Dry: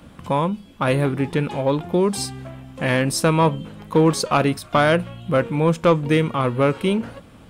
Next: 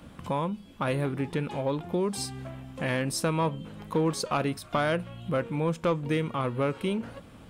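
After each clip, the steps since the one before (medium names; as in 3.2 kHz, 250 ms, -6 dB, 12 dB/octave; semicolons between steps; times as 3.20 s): compression 1.5:1, threshold -31 dBFS, peak gain reduction 7.5 dB; trim -3.5 dB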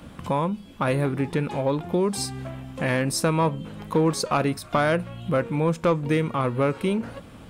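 dynamic bell 3.1 kHz, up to -5 dB, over -54 dBFS, Q 4.2; trim +5 dB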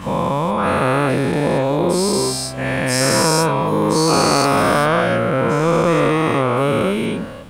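every event in the spectrogram widened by 480 ms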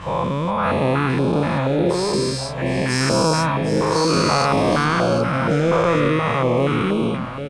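distance through air 79 m; delay 761 ms -10 dB; step-sequenced notch 4.2 Hz 240–1900 Hz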